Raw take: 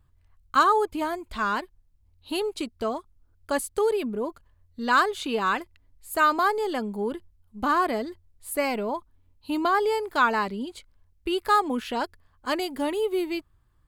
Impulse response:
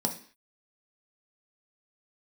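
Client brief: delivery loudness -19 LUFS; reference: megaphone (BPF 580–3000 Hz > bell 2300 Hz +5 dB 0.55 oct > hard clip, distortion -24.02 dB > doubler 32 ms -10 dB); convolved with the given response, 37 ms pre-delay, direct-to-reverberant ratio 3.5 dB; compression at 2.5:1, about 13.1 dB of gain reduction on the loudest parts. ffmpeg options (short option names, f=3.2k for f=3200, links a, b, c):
-filter_complex "[0:a]acompressor=threshold=-36dB:ratio=2.5,asplit=2[a][b];[1:a]atrim=start_sample=2205,adelay=37[c];[b][c]afir=irnorm=-1:irlink=0,volume=-9.5dB[d];[a][d]amix=inputs=2:normalize=0,highpass=580,lowpass=3k,equalizer=f=2.3k:t=o:w=0.55:g=5,asoftclip=type=hard:threshold=-24dB,asplit=2[e][f];[f]adelay=32,volume=-10dB[g];[e][g]amix=inputs=2:normalize=0,volume=17dB"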